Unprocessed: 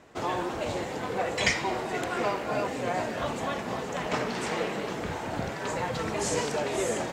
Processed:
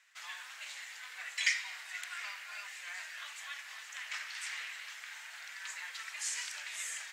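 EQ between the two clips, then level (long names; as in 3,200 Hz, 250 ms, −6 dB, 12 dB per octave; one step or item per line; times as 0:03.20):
four-pole ladder high-pass 1,500 Hz, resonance 40%
high-shelf EQ 3,600 Hz +8.5 dB
−2.5 dB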